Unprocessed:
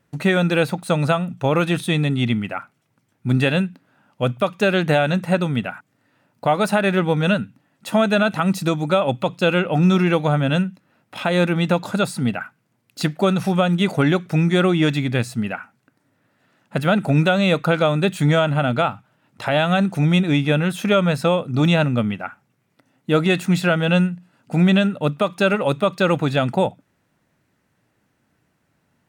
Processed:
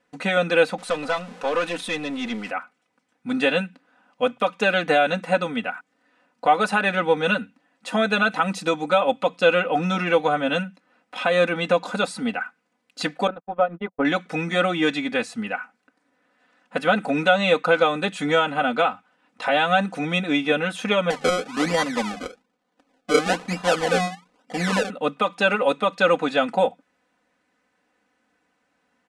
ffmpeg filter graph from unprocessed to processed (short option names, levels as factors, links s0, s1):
-filter_complex "[0:a]asettb=1/sr,asplit=3[s0][s1][s2];[s0]atrim=end=0.784[s3];[s1]atrim=start=0.78:end=2.51,asetpts=PTS-STARTPTS,afade=t=in:d=0.004:c=qsin,afade=t=out:st=1.726:d=0.004:c=qsin,aeval=exprs='val(0)+0.5*0.0282*sgn(val(0))':c=same,highpass=170,aeval=exprs='(tanh(6.31*val(0)+0.5)-tanh(0.5))/6.31':c=same[s4];[s2]atrim=start=2.506[s5];[s3][s4]acrossfade=d=0.004:c1=hsin:c2=qsin[s6];[s6][s5]acrossfade=d=0.004:c1=qsin:c2=hsin,asettb=1/sr,asplit=3[s7][s8][s9];[s7]atrim=end=13.274[s10];[s8]atrim=start=13.27:end=14.05,asetpts=PTS-STARTPTS,afade=t=in:d=0.004:c=qsin,afade=t=out:st=0.776:d=0.004:c=qsin,agate=range=0.00126:threshold=0.126:ratio=16:release=100:detection=peak,lowpass=1200,equalizer=f=190:t=o:w=0.22:g=-9.5[s11];[s9]atrim=start=14.046[s12];[s10][s11]acrossfade=d=0.004:c1=hsin:c2=qsin[s13];[s13][s12]acrossfade=d=0.004:c1=qsin:c2=hsin,asettb=1/sr,asplit=3[s14][s15][s16];[s14]atrim=end=21.104[s17];[s15]atrim=start=21.1:end=24.9,asetpts=PTS-STARTPTS,afade=t=in:d=0.004:c=qsin,afade=t=out:st=3.796:d=0.004:c=qsin,highpass=120,lowpass=2000,bandreject=f=50:t=h:w=6,bandreject=f=100:t=h:w=6,bandreject=f=150:t=h:w=6,bandreject=f=200:t=h:w=6,bandreject=f=250:t=h:w=6,acrusher=samples=33:mix=1:aa=0.000001:lfo=1:lforange=33:lforate=1.1[s18];[s16]atrim=start=24.896[s19];[s17][s18]acrossfade=d=0.004:c1=hsin:c2=qsin[s20];[s20][s19]acrossfade=d=0.004:c1=qsin:c2=hsin,lowpass=f=9500:w=0.5412,lowpass=f=9500:w=1.3066,bass=f=250:g=-14,treble=f=4000:g=-4,aecho=1:1:4:0.89,volume=0.841"